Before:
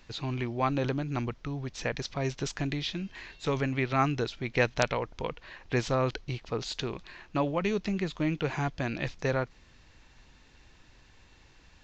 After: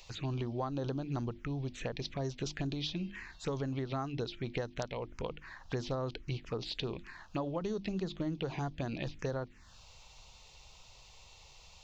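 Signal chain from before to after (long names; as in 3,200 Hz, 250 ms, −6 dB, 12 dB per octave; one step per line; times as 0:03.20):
mains-hum notches 50/100/150/200/250/300/350 Hz
downward compressor 10 to 1, threshold −31 dBFS, peak gain reduction 12 dB
phaser swept by the level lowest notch 240 Hz, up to 2,400 Hz, full sweep at −31 dBFS
one half of a high-frequency compander encoder only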